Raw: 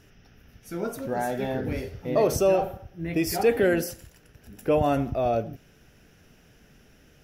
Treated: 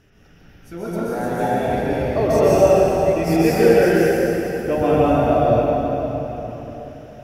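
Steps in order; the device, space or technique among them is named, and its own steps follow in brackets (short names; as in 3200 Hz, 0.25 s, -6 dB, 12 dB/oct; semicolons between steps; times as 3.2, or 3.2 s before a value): swimming-pool hall (reverb RT60 4.0 s, pre-delay 0.119 s, DRR -8.5 dB; high shelf 5000 Hz -8 dB)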